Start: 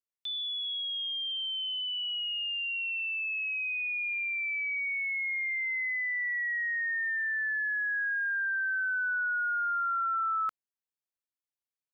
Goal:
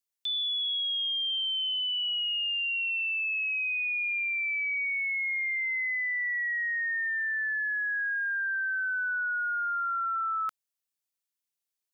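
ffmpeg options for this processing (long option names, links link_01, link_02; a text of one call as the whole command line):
ffmpeg -i in.wav -af "highshelf=frequency=2400:gain=11,volume=-3dB" out.wav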